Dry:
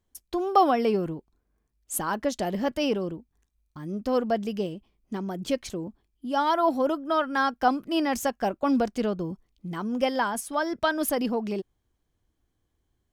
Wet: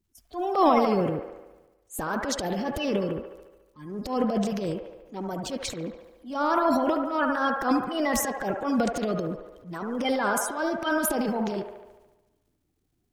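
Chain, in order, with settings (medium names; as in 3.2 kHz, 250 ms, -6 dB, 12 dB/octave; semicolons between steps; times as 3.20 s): coarse spectral quantiser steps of 30 dB; transient shaper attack -11 dB, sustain +9 dB; feedback echo behind a band-pass 72 ms, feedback 64%, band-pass 1 kHz, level -3.5 dB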